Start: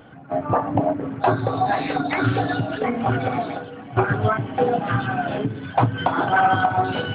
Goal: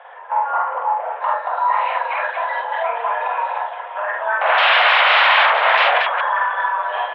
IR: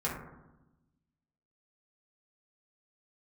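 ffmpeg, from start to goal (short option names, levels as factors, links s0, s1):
-filter_complex "[0:a]highshelf=f=2300:g=-9,alimiter=limit=0.1:level=0:latency=1:release=248,asettb=1/sr,asplit=3[s0][s1][s2];[s0]atrim=end=4.414[s3];[s1]atrim=start=4.41:end=5.98,asetpts=PTS-STARTPTS,afade=t=in:d=0.004:c=qsin,afade=t=out:st=1.566:d=0.004:c=qsin,aeval=exprs='0.1*sin(PI/2*6.31*val(0)/0.1)':c=same[s4];[s2]atrim=start=5.976[s5];[s3][s4]acrossfade=d=0.004:c1=hsin:c2=qsin[s6];[s6][s5]acrossfade=d=0.004:c1=qsin:c2=hsin,aecho=1:1:46.65|78.72|230.3:0.891|0.447|0.501,highpass=f=390:t=q:w=0.5412,highpass=f=390:t=q:w=1.307,lowpass=f=3100:t=q:w=0.5176,lowpass=f=3100:t=q:w=0.7071,lowpass=f=3100:t=q:w=1.932,afreqshift=230,volume=2.51"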